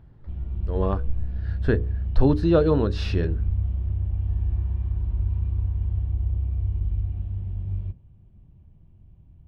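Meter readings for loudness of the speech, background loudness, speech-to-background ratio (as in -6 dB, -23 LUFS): -24.5 LUFS, -28.5 LUFS, 4.0 dB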